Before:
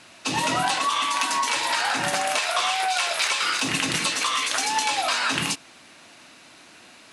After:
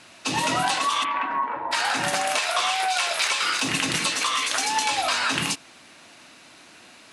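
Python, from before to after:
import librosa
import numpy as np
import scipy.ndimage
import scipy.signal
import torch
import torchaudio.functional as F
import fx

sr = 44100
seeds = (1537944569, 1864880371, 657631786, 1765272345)

y = fx.lowpass(x, sr, hz=fx.line((1.03, 2800.0), (1.71, 1100.0)), slope=24, at=(1.03, 1.71), fade=0.02)
y = fx.peak_eq(y, sr, hz=84.0, db=fx.line((4.79, 5.0), (5.23, 12.0)), octaves=1.5, at=(4.79, 5.23), fade=0.02)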